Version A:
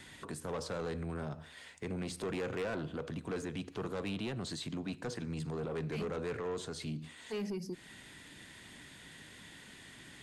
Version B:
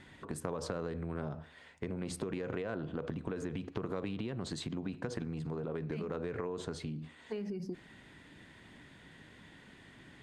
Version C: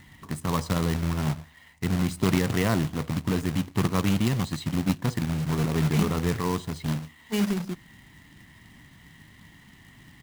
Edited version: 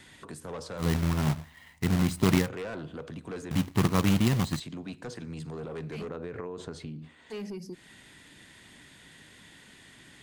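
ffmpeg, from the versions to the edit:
-filter_complex "[2:a]asplit=2[a][b];[0:a]asplit=4[c][d][e][f];[c]atrim=end=0.87[g];[a]atrim=start=0.77:end=2.5[h];[d]atrim=start=2.4:end=3.512[i];[b]atrim=start=3.508:end=4.602[j];[e]atrim=start=4.598:end=6.092[k];[1:a]atrim=start=6.088:end=7.302[l];[f]atrim=start=7.298[m];[g][h]acrossfade=d=0.1:c1=tri:c2=tri[n];[n][i]acrossfade=d=0.1:c1=tri:c2=tri[o];[o][j]acrossfade=d=0.004:c1=hsin:c2=hsin[p];[p][k]acrossfade=d=0.004:c1=hsin:c2=hsin[q];[q][l]acrossfade=d=0.004:c1=hsin:c2=hsin[r];[r][m]acrossfade=d=0.004:c1=hsin:c2=hsin"

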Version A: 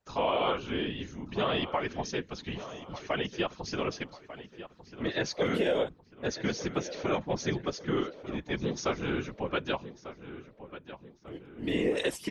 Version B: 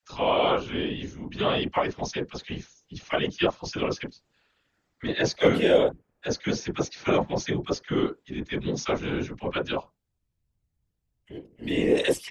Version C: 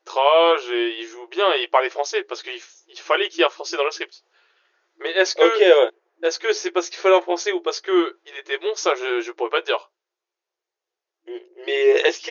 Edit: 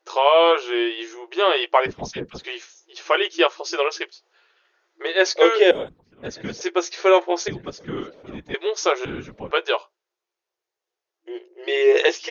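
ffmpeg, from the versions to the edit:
-filter_complex "[0:a]asplit=3[a][b][c];[2:a]asplit=5[d][e][f][g][h];[d]atrim=end=1.862[i];[1:a]atrim=start=1.858:end=2.442[j];[e]atrim=start=2.438:end=5.712[k];[a]atrim=start=5.708:end=6.612[l];[f]atrim=start=6.608:end=7.482[m];[b]atrim=start=7.478:end=8.542[n];[g]atrim=start=8.538:end=9.052[o];[c]atrim=start=9.048:end=9.512[p];[h]atrim=start=9.508[q];[i][j]acrossfade=d=0.004:c1=hsin:c2=hsin[r];[r][k]acrossfade=d=0.004:c1=hsin:c2=hsin[s];[s][l]acrossfade=d=0.004:c1=hsin:c2=hsin[t];[t][m]acrossfade=d=0.004:c1=hsin:c2=hsin[u];[u][n]acrossfade=d=0.004:c1=hsin:c2=hsin[v];[v][o]acrossfade=d=0.004:c1=hsin:c2=hsin[w];[w][p]acrossfade=d=0.004:c1=hsin:c2=hsin[x];[x][q]acrossfade=d=0.004:c1=hsin:c2=hsin"

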